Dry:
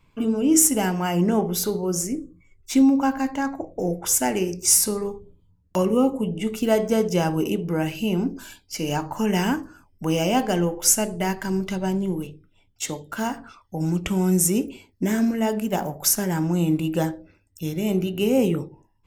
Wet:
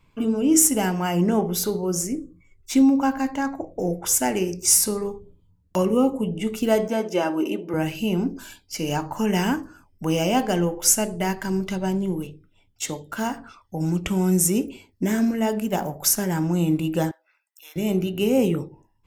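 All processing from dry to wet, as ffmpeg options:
-filter_complex "[0:a]asettb=1/sr,asplit=3[a][b][c];[a]atrim=end=6.884[d];[b]atrim=start=6.88:end=7.74,asetpts=PTS-STARTPTS,afade=t=in:d=0.004:c=qsin,afade=t=out:st=0.856:d=0.004:c=qsin,highpass=160,bass=f=250:g=-7,treble=f=4k:g=-9,aecho=1:1:3.3:0.58,atrim=end_sample=37926[e];[c]atrim=start=7.736[f];[d][e]acrossfade=d=0.004:c1=hsin:c2=qsin[g];[g][f]acrossfade=d=0.004:c1=qsin:c2=hsin,asettb=1/sr,asplit=3[h][i][j];[h]atrim=end=17.114[k];[i]atrim=start=17.11:end=17.76,asetpts=PTS-STARTPTS,afade=t=in:d=0.004:c=qsin,afade=t=out:st=0.646:d=0.004:c=qsin,highpass=f=940:w=0.5412,highpass=f=940:w=1.3066,equalizer=f=6.3k:w=0.67:g=-8[l];[j]atrim=start=17.756[m];[k][l]acrossfade=d=0.004:c1=hsin:c2=qsin[n];[n][m]acrossfade=d=0.004:c1=qsin:c2=hsin"

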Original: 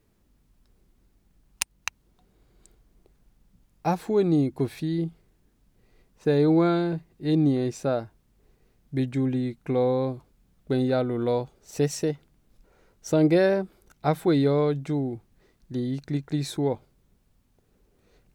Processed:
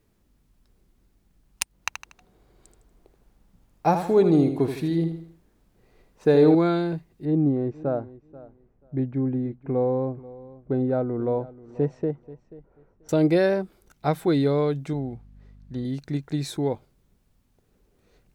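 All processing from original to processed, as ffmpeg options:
-filter_complex "[0:a]asettb=1/sr,asplit=3[a][b][c];[a]atrim=end=1.734[d];[b]atrim=start=1.73:end=6.55,asetpts=PTS-STARTPTS,afade=t=in:d=0.004:c=qsin,afade=t=out:st=4.816:d=0.004:c=qsin,equalizer=f=700:t=o:w=2.5:g=5.5,aecho=1:1:79|158|237|316:0.376|0.15|0.0601|0.0241,atrim=end_sample=212562[e];[c]atrim=start=6.546[f];[d][e]acrossfade=d=0.004:c1=hsin:c2=qsin[g];[g][f]acrossfade=d=0.004:c1=qsin:c2=hsin,asettb=1/sr,asplit=3[h][i][j];[h]atrim=end=7.254[k];[i]atrim=start=7.25:end=13.09,asetpts=PTS-STARTPTS,afade=t=in:d=0.004:c=qsin,afade=t=out:st=5.836:d=0.004:c=qsin,lowpass=1.1k,aecho=1:1:485|970:0.112|0.0202,atrim=end_sample=257544[l];[j]atrim=start=13.086[m];[k][l]acrossfade=d=0.004:c1=hsin:c2=qsin[n];[n][m]acrossfade=d=0.004:c1=qsin:c2=hsin,asettb=1/sr,asplit=3[o][p][q];[o]atrim=end=14.934[r];[p]atrim=start=14.93:end=15.85,asetpts=PTS-STARTPTS,afade=t=in:d=0.004:c=qsin,afade=t=out:st=0.916:d=0.004:c=qsin,lowpass=f=3.3k:p=1,aeval=exprs='val(0)+0.00398*(sin(2*PI*50*n/s)+sin(2*PI*2*50*n/s)/2+sin(2*PI*3*50*n/s)/3+sin(2*PI*4*50*n/s)/4+sin(2*PI*5*50*n/s)/5)':c=same,equalizer=f=330:w=3.9:g=-10.5[s];[q]atrim=start=15.846[t];[r][s]acrossfade=d=0.004:c1=hsin:c2=qsin[u];[u][t]acrossfade=d=0.004:c1=qsin:c2=hsin"

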